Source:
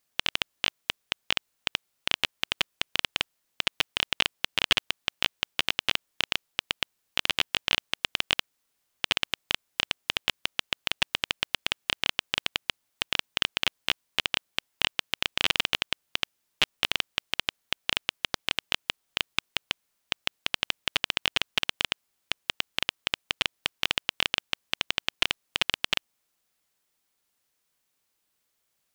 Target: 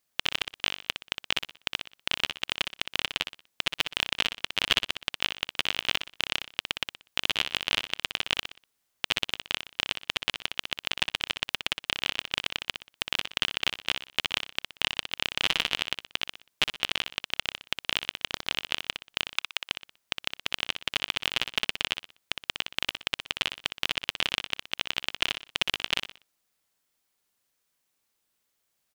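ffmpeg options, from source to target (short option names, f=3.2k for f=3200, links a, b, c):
-filter_complex "[0:a]asettb=1/sr,asplit=3[a][b][c];[a]atrim=end=19.294[d];[b]atrim=start=19.29:end=19.7,asetpts=PTS-STARTPTS,afade=t=in:d=0.004:c=qsin,afade=t=out:st=0.406:d=0.004:c=qsin,highpass=620[e];[c]atrim=start=19.696[f];[d][e]acrossfade=d=0.004:c1=hsin:c2=qsin[g];[g][f]acrossfade=d=0.004:c1=qsin:c2=hsin,asplit=2[h][i];[i]aecho=0:1:61|122|183|244:0.398|0.135|0.046|0.0156[j];[h][j]amix=inputs=2:normalize=0,volume=-1.5dB"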